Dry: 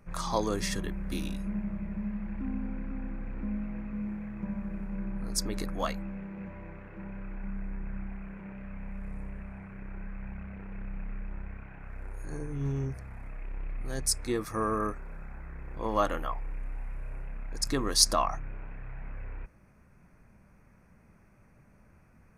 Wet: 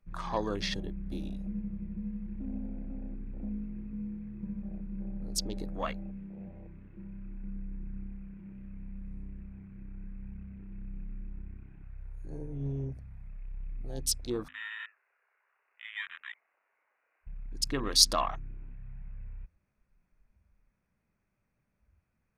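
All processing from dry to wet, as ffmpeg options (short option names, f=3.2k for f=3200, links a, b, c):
-filter_complex "[0:a]asettb=1/sr,asplit=3[a][b][c];[a]atrim=end=14.484[d];[b]atrim=start=14.48:end=17.27,asetpts=PTS-STARTPTS,afade=t=in:d=0.004:c=qsin,afade=t=out:st=2.786:d=0.004:c=qsin,highpass=1.2k,acompressor=threshold=-42dB:ratio=1.5:attack=3.2:release=140:knee=1:detection=peak,lowpass=f=2.6k:t=q:w=0.5098,lowpass=f=2.6k:t=q:w=0.6013,lowpass=f=2.6k:t=q:w=0.9,lowpass=f=2.6k:t=q:w=2.563,afreqshift=-3000[e];[c]atrim=start=17.266[f];[d][e]acrossfade=d=0.004:c1=hsin:c2=qsin[g];[g][f]acrossfade=d=0.004:c1=qsin:c2=hsin,afwtdn=0.0112,equalizer=f=3.5k:w=1.4:g=9.5,bandreject=f=85.77:t=h:w=4,bandreject=f=171.54:t=h:w=4,bandreject=f=257.31:t=h:w=4,volume=-3dB"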